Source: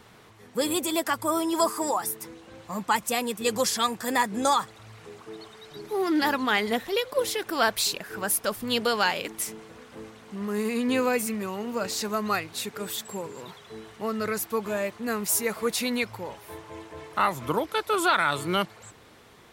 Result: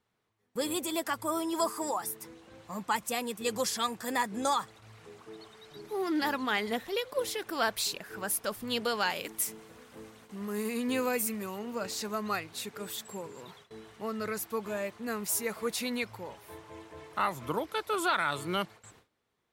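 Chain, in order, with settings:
0:09.10–0:11.59: high-shelf EQ 10,000 Hz +11.5 dB
noise gate with hold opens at −38 dBFS
level −6 dB

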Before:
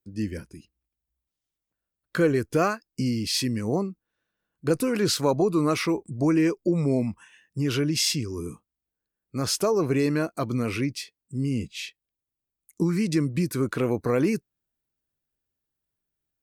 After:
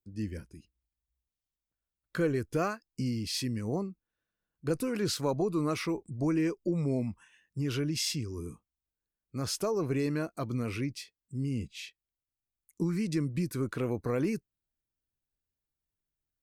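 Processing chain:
low-shelf EQ 79 Hz +11 dB
level −8 dB

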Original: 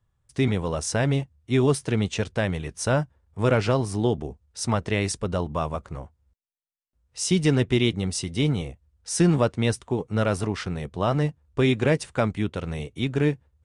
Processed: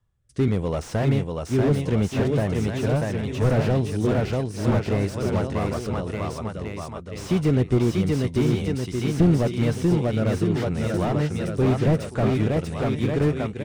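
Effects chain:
rotating-speaker cabinet horn 0.8 Hz
bouncing-ball delay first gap 640 ms, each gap 0.9×, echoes 5
slew-rate limiting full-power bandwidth 41 Hz
level +2.5 dB

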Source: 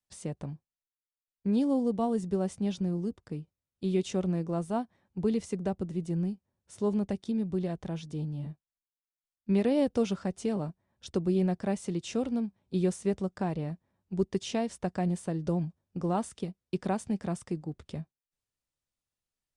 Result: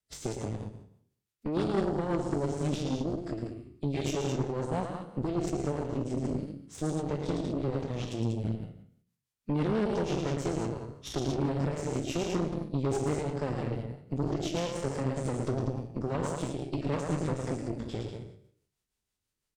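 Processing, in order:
peak hold with a decay on every bin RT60 0.62 s
rotating-speaker cabinet horn 6 Hz
dynamic equaliser 900 Hz, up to −4 dB, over −50 dBFS, Q 3.5
downward compressor 2 to 1, threshold −41 dBFS, peak gain reduction 10.5 dB
loudspeakers that aren't time-aligned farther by 38 metres −5 dB, 66 metres −6 dB
phase-vocoder pitch shift with formants kept −5 semitones
harmonic generator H 6 −14 dB, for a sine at −23.5 dBFS
level +5 dB

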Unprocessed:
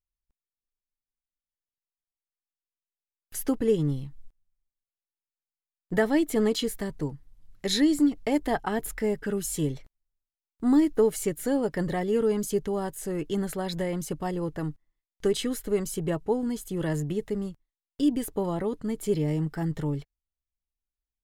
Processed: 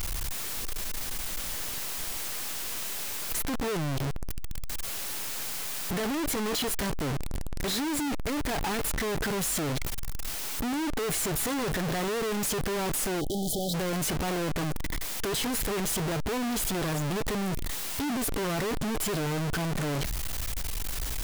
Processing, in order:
sign of each sample alone
time-frequency box erased 0:13.21–0:13.74, 820–3,000 Hz

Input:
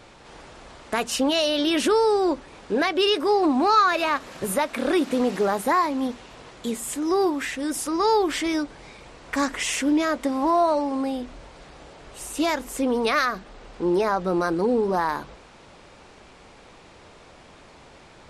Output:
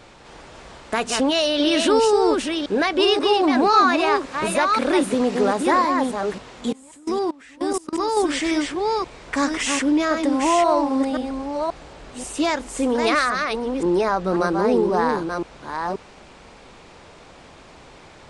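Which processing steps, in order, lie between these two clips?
delay that plays each chunk backwards 532 ms, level −4.5 dB
downsampling to 22,050 Hz
0:06.72–0:08.17: output level in coarse steps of 24 dB
level +2 dB

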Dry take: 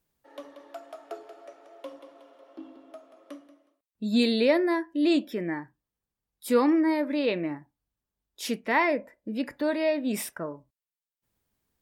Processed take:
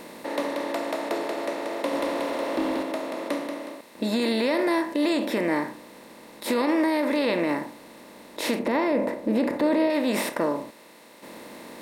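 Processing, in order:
compressor on every frequency bin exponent 0.4
0:01.93–0:02.83: leveller curve on the samples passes 1
0:08.59–0:09.90: tilt shelving filter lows +5.5 dB, about 1,200 Hz
brickwall limiter −12.5 dBFS, peak gain reduction 8 dB
level −2 dB

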